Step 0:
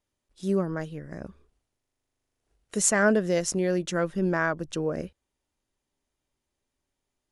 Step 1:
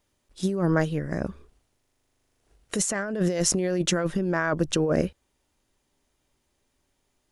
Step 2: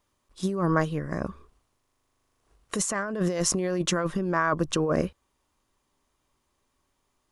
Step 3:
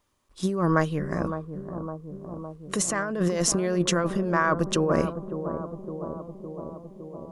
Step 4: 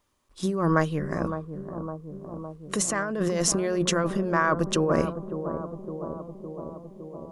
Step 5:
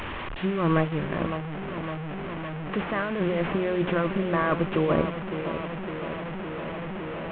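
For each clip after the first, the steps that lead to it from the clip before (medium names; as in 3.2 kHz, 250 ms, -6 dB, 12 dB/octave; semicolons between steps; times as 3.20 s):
compressor with a negative ratio -30 dBFS, ratio -1; trim +5.5 dB
peaking EQ 1.1 kHz +11 dB 0.38 oct; trim -2 dB
bucket-brigade echo 560 ms, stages 4096, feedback 71%, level -9 dB; trim +1.5 dB
hum notches 60/120/180 Hz
one-bit delta coder 16 kbps, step -27.5 dBFS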